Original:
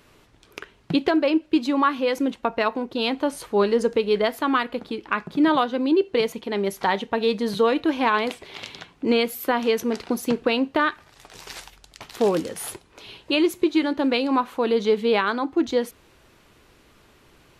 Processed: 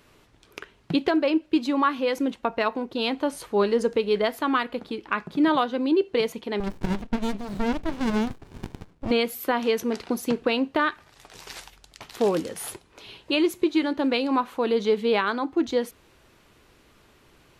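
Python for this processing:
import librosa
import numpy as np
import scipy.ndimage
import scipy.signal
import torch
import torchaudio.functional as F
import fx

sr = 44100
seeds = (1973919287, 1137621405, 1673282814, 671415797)

y = fx.running_max(x, sr, window=65, at=(6.6, 9.11))
y = y * librosa.db_to_amplitude(-2.0)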